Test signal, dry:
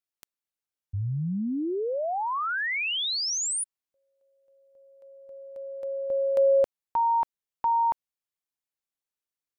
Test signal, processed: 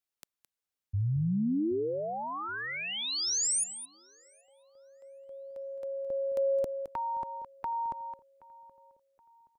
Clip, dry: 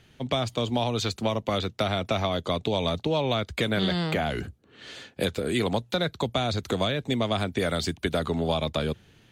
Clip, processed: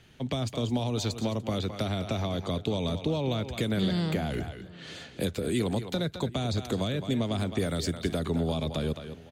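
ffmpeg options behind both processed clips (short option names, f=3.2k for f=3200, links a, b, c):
-filter_complex "[0:a]asplit=2[a][b];[b]aecho=0:1:215:0.224[c];[a][c]amix=inputs=2:normalize=0,acrossover=split=420|5200[d][e][f];[e]acompressor=threshold=-43dB:ratio=2:attack=5.5:release=93:knee=2.83:detection=peak[g];[d][g][f]amix=inputs=3:normalize=0,asplit=2[h][i];[i]adelay=774,lowpass=f=2.1k:p=1,volume=-21.5dB,asplit=2[j][k];[k]adelay=774,lowpass=f=2.1k:p=1,volume=0.42,asplit=2[l][m];[m]adelay=774,lowpass=f=2.1k:p=1,volume=0.42[n];[j][l][n]amix=inputs=3:normalize=0[o];[h][o]amix=inputs=2:normalize=0"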